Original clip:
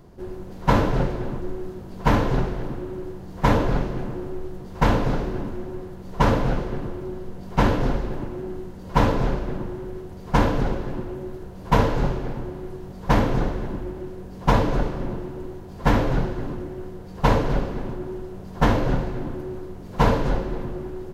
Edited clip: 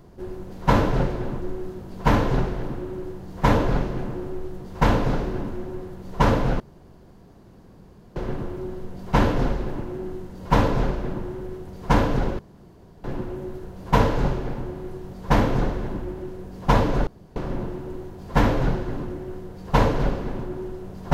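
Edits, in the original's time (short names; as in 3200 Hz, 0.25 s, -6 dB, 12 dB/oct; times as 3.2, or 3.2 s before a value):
6.6 insert room tone 1.56 s
10.83 insert room tone 0.65 s
14.86 insert room tone 0.29 s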